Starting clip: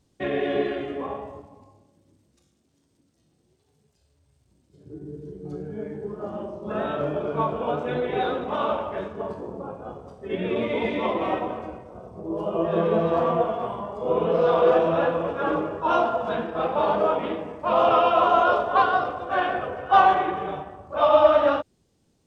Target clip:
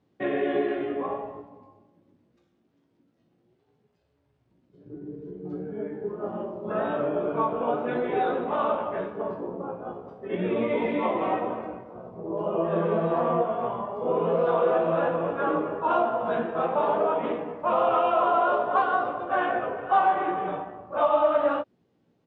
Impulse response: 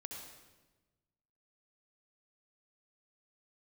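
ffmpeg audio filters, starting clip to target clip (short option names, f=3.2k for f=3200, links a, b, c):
-filter_complex "[0:a]highpass=140,lowpass=2.3k,asplit=2[a][b];[b]adelay=17,volume=-6dB[c];[a][c]amix=inputs=2:normalize=0,acompressor=threshold=-22dB:ratio=2"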